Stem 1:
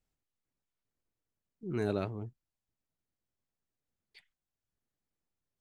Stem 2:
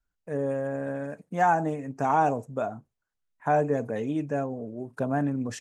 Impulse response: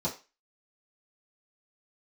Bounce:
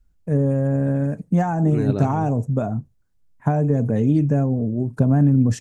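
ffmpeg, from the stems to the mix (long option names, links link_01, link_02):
-filter_complex "[0:a]volume=1.5dB[link_01];[1:a]highshelf=frequency=4100:gain=-12,acompressor=threshold=-26dB:ratio=6,bass=frequency=250:gain=11,treble=frequency=4000:gain=14,volume=1.5dB[link_02];[link_01][link_02]amix=inputs=2:normalize=0,lowshelf=frequency=410:gain=9.5"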